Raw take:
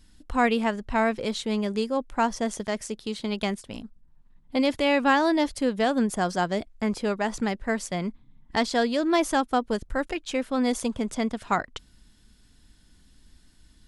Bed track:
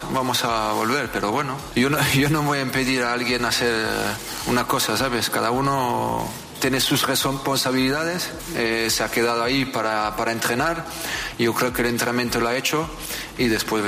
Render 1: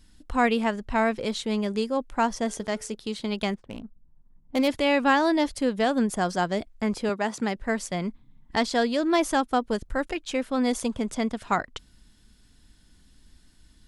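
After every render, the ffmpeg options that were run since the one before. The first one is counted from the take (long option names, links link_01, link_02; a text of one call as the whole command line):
ffmpeg -i in.wav -filter_complex "[0:a]asettb=1/sr,asplit=3[link_01][link_02][link_03];[link_01]atrim=end=2.384[link_04];[link_02]atrim=start=2.38:end=2.95,asetpts=PTS-STARTPTS,afade=type=in:duration=0.004:curve=qsin,afade=type=out:start_time=0.566:duration=0.004:curve=qsin,bandreject=frequency=144.5:width_type=h:width=4,bandreject=frequency=289:width_type=h:width=4,bandreject=frequency=433.5:width_type=h:width=4,bandreject=frequency=578:width_type=h:width=4,bandreject=frequency=722.5:width_type=h:width=4,bandreject=frequency=867:width_type=h:width=4,bandreject=frequency=1011.5:width_type=h:width=4,bandreject=frequency=1156:width_type=h:width=4,bandreject=frequency=1300.5:width_type=h:width=4,bandreject=frequency=1445:width_type=h:width=4,bandreject=frequency=1589.5:width_type=h:width=4[link_05];[link_03]atrim=start=2.946[link_06];[link_04][link_05]acrossfade=duration=0.004:curve1=hsin:curve2=qsin[link_07];[link_07][link_06]acrossfade=duration=0.004:curve1=qsin:curve2=hsin,asettb=1/sr,asplit=3[link_08][link_09][link_10];[link_08]atrim=end=3.544[link_11];[link_09]atrim=start=3.54:end=4.68,asetpts=PTS-STARTPTS,afade=type=in:duration=0.004:curve=qsin,afade=type=out:start_time=1.136:duration=0.004:curve=qsin,adynamicsmooth=sensitivity=7.5:basefreq=1000[link_12];[link_10]atrim=start=4.676[link_13];[link_11][link_12]acrossfade=duration=0.004:curve1=hsin:curve2=qsin[link_14];[link_14][link_13]acrossfade=duration=0.004:curve1=qsin:curve2=hsin,asettb=1/sr,asplit=3[link_15][link_16][link_17];[link_15]atrim=end=7.094[link_18];[link_16]atrim=start=7.09:end=7.56,asetpts=PTS-STARTPTS,afade=type=in:duration=0.004:curve=qsin,afade=type=out:start_time=0.466:duration=0.004:curve=qsin,highpass=150[link_19];[link_17]atrim=start=7.556[link_20];[link_18][link_19]acrossfade=duration=0.004:curve1=hsin:curve2=qsin[link_21];[link_21][link_20]acrossfade=duration=0.004:curve1=qsin:curve2=hsin" out.wav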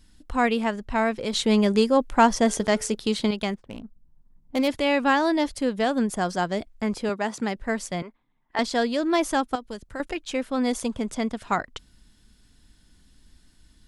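ffmpeg -i in.wav -filter_complex "[0:a]asettb=1/sr,asplit=3[link_01][link_02][link_03];[link_01]atrim=end=1.334[link_04];[link_02]atrim=start=1.33:end=3.31,asetpts=PTS-STARTPTS,afade=type=in:duration=0.004:curve=qsin,afade=type=out:start_time=1.976:duration=0.004:curve=qsin,acontrast=89[link_05];[link_03]atrim=start=3.306[link_06];[link_04][link_05]acrossfade=duration=0.004:curve1=hsin:curve2=qsin[link_07];[link_07][link_06]acrossfade=duration=0.004:curve1=qsin:curve2=hsin,asettb=1/sr,asplit=3[link_08][link_09][link_10];[link_08]atrim=end=8.024[link_11];[link_09]atrim=start=8.02:end=8.59,asetpts=PTS-STARTPTS,afade=type=in:duration=0.004:curve=qsin,afade=type=out:start_time=0.566:duration=0.004:curve=qsin,acrossover=split=410 2900:gain=0.1 1 0.178[link_12][link_13][link_14];[link_12][link_13][link_14]amix=inputs=3:normalize=0[link_15];[link_10]atrim=start=8.586[link_16];[link_11][link_15]acrossfade=duration=0.004:curve1=hsin:curve2=qsin[link_17];[link_17][link_16]acrossfade=duration=0.004:curve1=qsin:curve2=hsin,asettb=1/sr,asplit=3[link_18][link_19][link_20];[link_18]atrim=end=9.554[link_21];[link_19]atrim=start=9.55:end=10,asetpts=PTS-STARTPTS,afade=type=in:duration=0.004:curve=qsin,afade=type=out:start_time=0.446:duration=0.004:curve=qsin,acrossover=split=81|2400[link_22][link_23][link_24];[link_22]acompressor=threshold=-48dB:ratio=4[link_25];[link_23]acompressor=threshold=-34dB:ratio=4[link_26];[link_24]acompressor=threshold=-45dB:ratio=4[link_27];[link_25][link_26][link_27]amix=inputs=3:normalize=0[link_28];[link_20]atrim=start=9.996[link_29];[link_21][link_28]acrossfade=duration=0.004:curve1=hsin:curve2=qsin[link_30];[link_30][link_29]acrossfade=duration=0.004:curve1=qsin:curve2=hsin" out.wav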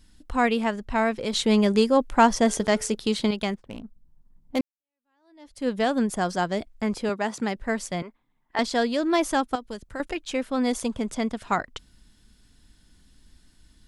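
ffmpeg -i in.wav -filter_complex "[0:a]asplit=2[link_01][link_02];[link_01]atrim=end=4.61,asetpts=PTS-STARTPTS,afade=type=out:start_time=4.606:duration=0.004:curve=hsin[link_03];[link_02]atrim=start=4.61,asetpts=PTS-STARTPTS,afade=type=in:duration=1.07:curve=exp[link_04];[link_03][link_04]concat=n=2:v=0:a=1" out.wav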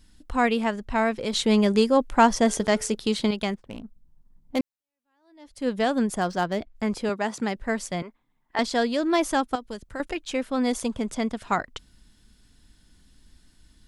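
ffmpeg -i in.wav -filter_complex "[0:a]asettb=1/sr,asplit=3[link_01][link_02][link_03];[link_01]atrim=end=6.214[link_04];[link_02]atrim=start=6.21:end=6.75,asetpts=PTS-STARTPTS,afade=type=in:duration=0.004:curve=qsin,afade=type=out:start_time=0.536:duration=0.004:curve=qsin,adynamicsmooth=sensitivity=5:basefreq=4000[link_05];[link_03]atrim=start=6.746[link_06];[link_04][link_05]acrossfade=duration=0.004:curve1=hsin:curve2=qsin[link_07];[link_07][link_06]acrossfade=duration=0.004:curve1=qsin:curve2=hsin" out.wav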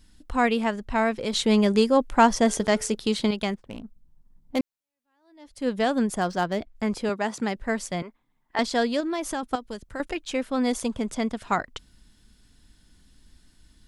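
ffmpeg -i in.wav -filter_complex "[0:a]asettb=1/sr,asplit=3[link_01][link_02][link_03];[link_01]atrim=end=9.004[link_04];[link_02]atrim=start=9:end=9.43,asetpts=PTS-STARTPTS,afade=type=in:duration=0.004:curve=qsin,afade=type=out:start_time=0.426:duration=0.004:curve=qsin,acompressor=threshold=-26dB:ratio=4:attack=3.2:release=140:knee=1:detection=peak[link_05];[link_03]atrim=start=9.426[link_06];[link_04][link_05]acrossfade=duration=0.004:curve1=hsin:curve2=qsin[link_07];[link_07][link_06]acrossfade=duration=0.004:curve1=qsin:curve2=hsin" out.wav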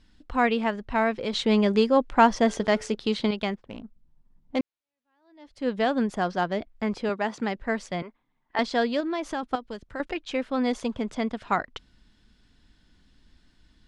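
ffmpeg -i in.wav -af "lowpass=4200,lowshelf=frequency=180:gain=-4" out.wav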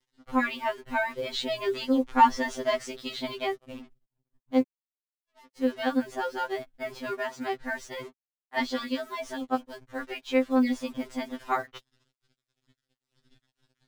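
ffmpeg -i in.wav -af "acrusher=bits=7:mix=0:aa=0.5,afftfilt=real='re*2.45*eq(mod(b,6),0)':imag='im*2.45*eq(mod(b,6),0)':win_size=2048:overlap=0.75" out.wav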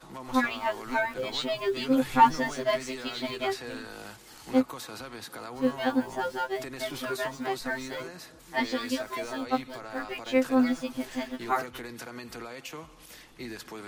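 ffmpeg -i in.wav -i bed.wav -filter_complex "[1:a]volume=-19.5dB[link_01];[0:a][link_01]amix=inputs=2:normalize=0" out.wav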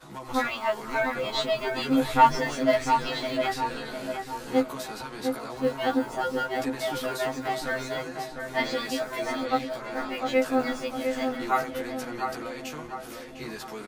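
ffmpeg -i in.wav -filter_complex "[0:a]asplit=2[link_01][link_02];[link_02]adelay=14,volume=-2dB[link_03];[link_01][link_03]amix=inputs=2:normalize=0,asplit=2[link_04][link_05];[link_05]adelay=703,lowpass=frequency=1900:poles=1,volume=-5dB,asplit=2[link_06][link_07];[link_07]adelay=703,lowpass=frequency=1900:poles=1,volume=0.51,asplit=2[link_08][link_09];[link_09]adelay=703,lowpass=frequency=1900:poles=1,volume=0.51,asplit=2[link_10][link_11];[link_11]adelay=703,lowpass=frequency=1900:poles=1,volume=0.51,asplit=2[link_12][link_13];[link_13]adelay=703,lowpass=frequency=1900:poles=1,volume=0.51,asplit=2[link_14][link_15];[link_15]adelay=703,lowpass=frequency=1900:poles=1,volume=0.51[link_16];[link_06][link_08][link_10][link_12][link_14][link_16]amix=inputs=6:normalize=0[link_17];[link_04][link_17]amix=inputs=2:normalize=0" out.wav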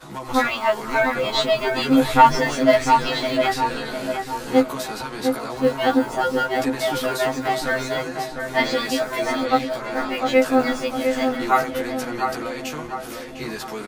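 ffmpeg -i in.wav -af "volume=7dB,alimiter=limit=-2dB:level=0:latency=1" out.wav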